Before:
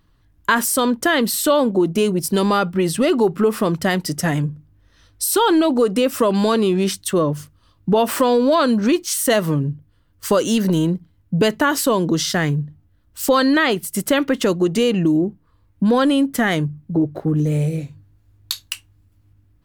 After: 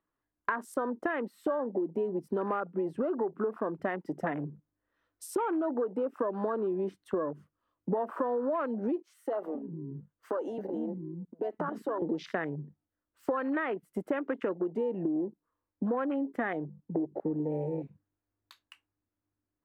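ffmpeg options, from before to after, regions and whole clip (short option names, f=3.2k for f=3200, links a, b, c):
-filter_complex "[0:a]asettb=1/sr,asplit=3[a][b][c];[a]atrim=end=9.034[d];[b]atrim=start=9.03:end=12.02,asetpts=PTS-STARTPTS,afade=t=in:d=0.004:c=qsin,afade=t=out:st=2.986:d=0.004:c=qsin,acompressor=threshold=-21dB:ratio=16:attack=3.2:release=140:knee=1:detection=peak,acrossover=split=260[e][f];[e]adelay=270[g];[g][f]amix=inputs=2:normalize=0,atrim=end_sample=131859[h];[c]atrim=start=12.016[i];[d][h]acrossfade=d=0.004:c1=hsin:c2=qsin[j];[j][i]acrossfade=d=0.004:c1=qsin:c2=hsin,afwtdn=0.0562,acrossover=split=260 2200:gain=0.0891 1 0.0794[k][l][m];[k][l][m]amix=inputs=3:normalize=0,acompressor=threshold=-29dB:ratio=6"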